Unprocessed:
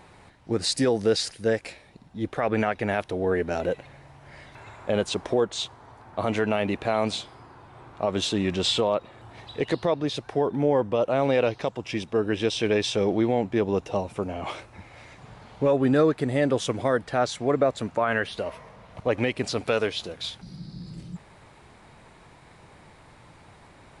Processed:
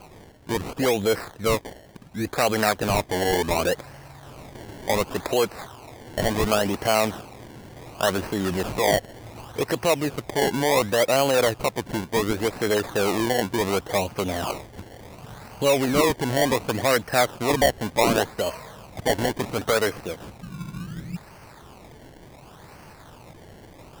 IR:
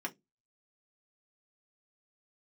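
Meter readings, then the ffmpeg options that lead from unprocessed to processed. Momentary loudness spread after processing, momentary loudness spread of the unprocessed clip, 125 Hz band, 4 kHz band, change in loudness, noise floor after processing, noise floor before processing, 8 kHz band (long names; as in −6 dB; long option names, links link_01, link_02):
20 LU, 14 LU, +1.0 dB, +1.5 dB, +2.0 dB, −47 dBFS, −52 dBFS, +7.0 dB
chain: -filter_complex "[0:a]highshelf=frequency=2300:width_type=q:width=1.5:gain=-11,acrossover=split=540|1600[link_01][link_02][link_03];[link_01]alimiter=limit=-24dB:level=0:latency=1:release=25[link_04];[link_04][link_02][link_03]amix=inputs=3:normalize=0,acrusher=samples=24:mix=1:aa=0.000001:lfo=1:lforange=24:lforate=0.69,asoftclip=type=tanh:threshold=-13dB,volume=5dB"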